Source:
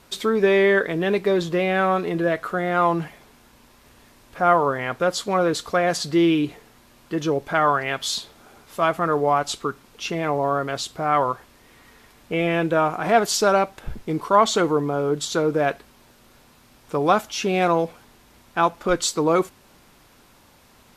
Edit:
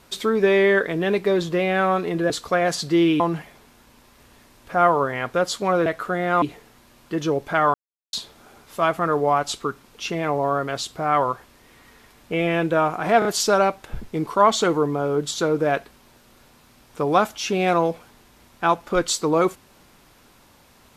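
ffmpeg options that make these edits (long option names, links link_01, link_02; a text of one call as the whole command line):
ffmpeg -i in.wav -filter_complex "[0:a]asplit=9[link_01][link_02][link_03][link_04][link_05][link_06][link_07][link_08][link_09];[link_01]atrim=end=2.302[link_10];[link_02]atrim=start=5.518:end=6.422[link_11];[link_03]atrim=start=2.858:end=5.522[link_12];[link_04]atrim=start=2.298:end=2.862[link_13];[link_05]atrim=start=6.418:end=7.74,asetpts=PTS-STARTPTS,afade=type=out:start_time=1.318:duration=0.004:curve=hsin[link_14];[link_06]atrim=start=7.74:end=8.13,asetpts=PTS-STARTPTS,volume=0[link_15];[link_07]atrim=start=8.13:end=13.222,asetpts=PTS-STARTPTS,afade=type=in:duration=0.004:curve=hsin[link_16];[link_08]atrim=start=13.188:end=13.222[link_17];[link_09]atrim=start=13.188[link_18];[link_10][link_11]acrossfade=duration=0.004:curve1=hsin:curve2=hsin[link_19];[link_19][link_12]acrossfade=duration=0.004:curve1=hsin:curve2=hsin[link_20];[link_20][link_13]acrossfade=duration=0.004:curve1=hsin:curve2=hsin[link_21];[link_14][link_15][link_16]concat=n=3:v=0:a=1[link_22];[link_21][link_22]acrossfade=duration=0.004:curve1=hsin:curve2=hsin[link_23];[link_23][link_17]acrossfade=duration=0.004:curve1=hsin:curve2=hsin[link_24];[link_24][link_18]acrossfade=duration=0.004:curve1=hsin:curve2=hsin" out.wav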